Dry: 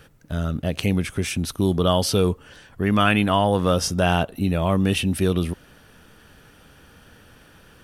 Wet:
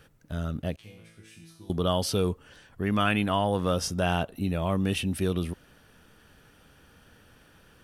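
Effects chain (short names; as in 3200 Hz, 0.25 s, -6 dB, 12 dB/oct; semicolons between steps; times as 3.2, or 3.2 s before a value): 0.76–1.7 resonator bank A2 fifth, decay 0.7 s; gain -6.5 dB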